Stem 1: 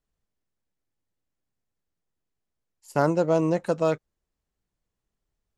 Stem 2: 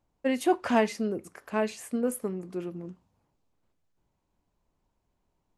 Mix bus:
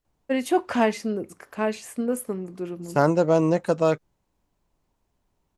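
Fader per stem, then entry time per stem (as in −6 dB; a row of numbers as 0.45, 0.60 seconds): +2.5, +2.5 decibels; 0.00, 0.05 seconds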